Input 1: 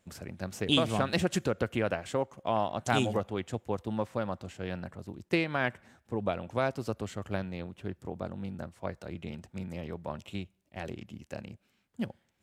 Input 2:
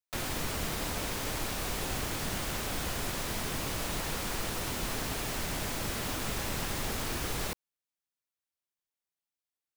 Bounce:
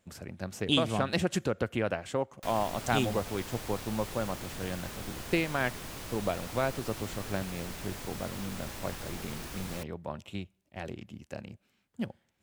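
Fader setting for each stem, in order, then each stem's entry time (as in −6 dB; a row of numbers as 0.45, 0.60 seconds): −0.5, −7.5 decibels; 0.00, 2.30 seconds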